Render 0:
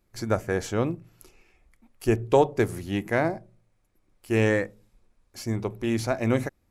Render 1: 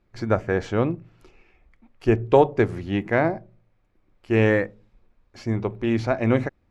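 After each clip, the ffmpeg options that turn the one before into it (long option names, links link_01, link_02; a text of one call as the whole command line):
ffmpeg -i in.wav -af "lowpass=3200,volume=3.5dB" out.wav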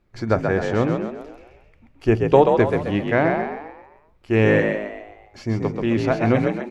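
ffmpeg -i in.wav -filter_complex "[0:a]asplit=7[link_01][link_02][link_03][link_04][link_05][link_06][link_07];[link_02]adelay=132,afreqshift=49,volume=-5dB[link_08];[link_03]adelay=264,afreqshift=98,volume=-11.9dB[link_09];[link_04]adelay=396,afreqshift=147,volume=-18.9dB[link_10];[link_05]adelay=528,afreqshift=196,volume=-25.8dB[link_11];[link_06]adelay=660,afreqshift=245,volume=-32.7dB[link_12];[link_07]adelay=792,afreqshift=294,volume=-39.7dB[link_13];[link_01][link_08][link_09][link_10][link_11][link_12][link_13]amix=inputs=7:normalize=0,volume=1.5dB" out.wav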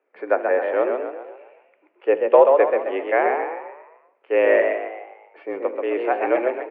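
ffmpeg -i in.wav -af "equalizer=frequency=470:width_type=o:width=0.3:gain=5.5,highpass=frequency=280:width_type=q:width=0.5412,highpass=frequency=280:width_type=q:width=1.307,lowpass=frequency=2600:width_type=q:width=0.5176,lowpass=frequency=2600:width_type=q:width=0.7071,lowpass=frequency=2600:width_type=q:width=1.932,afreqshift=77,aecho=1:1:75|150|225|300|375:0.126|0.0755|0.0453|0.0272|0.0163,volume=-1dB" out.wav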